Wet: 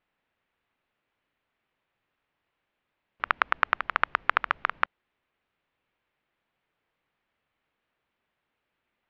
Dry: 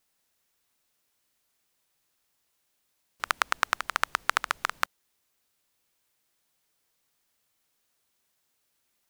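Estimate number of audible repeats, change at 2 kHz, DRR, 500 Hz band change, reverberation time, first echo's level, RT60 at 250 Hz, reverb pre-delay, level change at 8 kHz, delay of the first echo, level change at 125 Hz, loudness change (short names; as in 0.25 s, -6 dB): none, +2.5 dB, none, +2.5 dB, none, none, none, none, under -25 dB, none, n/a, +2.0 dB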